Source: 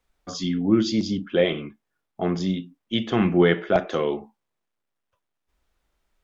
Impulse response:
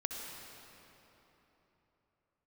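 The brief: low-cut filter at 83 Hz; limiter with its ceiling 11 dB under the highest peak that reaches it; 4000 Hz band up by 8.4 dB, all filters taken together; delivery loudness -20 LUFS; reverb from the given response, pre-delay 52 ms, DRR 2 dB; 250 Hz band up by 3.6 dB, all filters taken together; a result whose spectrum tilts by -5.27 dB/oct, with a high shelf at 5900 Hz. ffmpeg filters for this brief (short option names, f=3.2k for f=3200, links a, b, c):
-filter_complex "[0:a]highpass=83,equalizer=f=250:t=o:g=5,equalizer=f=4k:t=o:g=8.5,highshelf=f=5.9k:g=7.5,alimiter=limit=-14.5dB:level=0:latency=1,asplit=2[a][b];[1:a]atrim=start_sample=2205,adelay=52[c];[b][c]afir=irnorm=-1:irlink=0,volume=-3.5dB[d];[a][d]amix=inputs=2:normalize=0,volume=3.5dB"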